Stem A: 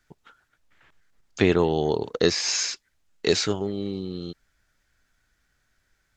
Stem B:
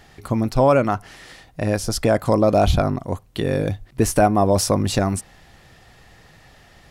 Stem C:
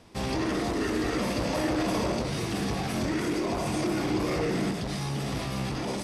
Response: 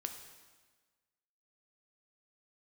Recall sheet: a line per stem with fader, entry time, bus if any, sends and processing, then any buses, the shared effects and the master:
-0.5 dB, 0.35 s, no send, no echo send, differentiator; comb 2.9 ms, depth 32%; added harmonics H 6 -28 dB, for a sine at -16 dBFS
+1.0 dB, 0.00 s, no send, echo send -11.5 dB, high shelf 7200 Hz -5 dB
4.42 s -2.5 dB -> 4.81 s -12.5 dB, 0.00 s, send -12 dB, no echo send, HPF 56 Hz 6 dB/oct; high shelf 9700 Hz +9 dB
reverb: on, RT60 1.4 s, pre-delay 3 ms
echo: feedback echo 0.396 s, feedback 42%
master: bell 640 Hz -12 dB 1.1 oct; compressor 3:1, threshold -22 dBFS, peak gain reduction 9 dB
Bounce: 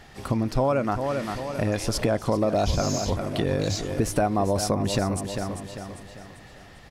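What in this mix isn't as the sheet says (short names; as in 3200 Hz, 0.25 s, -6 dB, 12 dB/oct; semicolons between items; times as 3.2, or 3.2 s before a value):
stem C -2.5 dB -> -13.0 dB; master: missing bell 640 Hz -12 dB 1.1 oct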